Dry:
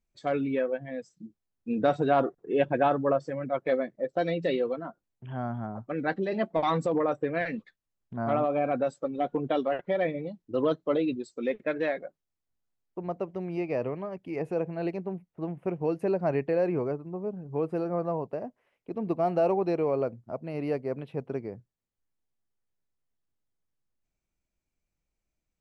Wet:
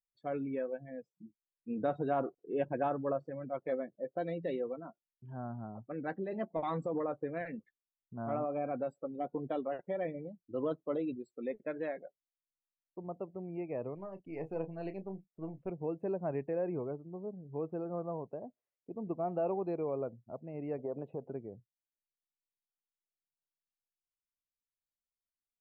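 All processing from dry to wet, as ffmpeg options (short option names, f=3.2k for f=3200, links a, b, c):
-filter_complex "[0:a]asettb=1/sr,asplit=3[a][b][c];[a]atrim=end=13.954[d];[b]atrim=start=13.95:end=15.7,asetpts=PTS-STARTPTS,afade=t=in:d=0.004:c=qsin,afade=t=out:st=1.746:d=0.004:c=qsin,aeval=exprs='if(lt(val(0),0),0.708*val(0),val(0))':c=same,equalizer=f=5.8k:w=0.51:g=11,asplit=2[e][f];[f]adelay=31,volume=-9.5dB[g];[e][g]amix=inputs=2:normalize=0,atrim=end_sample=77175[h];[c]atrim=start=15.696[i];[d][h]acrossfade=d=0.004:c1=hsin:c2=qsin[j];[j][i]acrossfade=d=0.004:c1=qsin:c2=hsin,asettb=1/sr,asplit=3[k][l][m];[k]atrim=end=20.784[n];[l]atrim=start=20.78:end=21.3,asetpts=PTS-STARTPTS,afade=t=in:d=0.004:c=qsin,afade=t=out:st=0.516:d=0.004:c=qsin,acompressor=threshold=-33dB:ratio=12:attack=3.2:release=140:knee=1:detection=peak,equalizer=f=590:w=0.51:g=11[o];[m]atrim=start=21.296[p];[n][o]acrossfade=d=0.004:c1=hsin:c2=qsin[q];[q][p]acrossfade=d=0.004:c1=qsin:c2=hsin,afftdn=nr=17:nf=-46,highshelf=f=2.4k:g=-12,volume=-8dB"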